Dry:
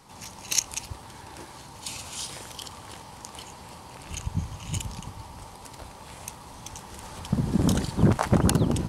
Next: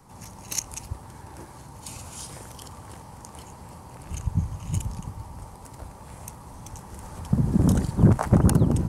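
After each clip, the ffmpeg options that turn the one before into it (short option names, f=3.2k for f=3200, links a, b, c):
-filter_complex "[0:a]acrossover=split=190|3400[a][b][c];[a]acontrast=29[d];[d][b][c]amix=inputs=3:normalize=0,equalizer=f=3.5k:w=0.86:g=-10.5"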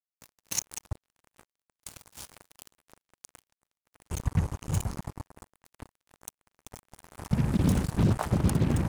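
-af "acrusher=bits=4:mix=0:aa=0.5,alimiter=limit=-12.5dB:level=0:latency=1:release=321,volume=-1.5dB"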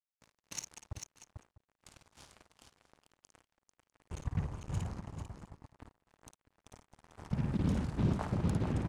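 -filter_complex "[0:a]adynamicsmooth=sensitivity=1.5:basefreq=5.9k,asplit=2[a][b];[b]aecho=0:1:54|444|649:0.447|0.473|0.106[c];[a][c]amix=inputs=2:normalize=0,volume=-8.5dB"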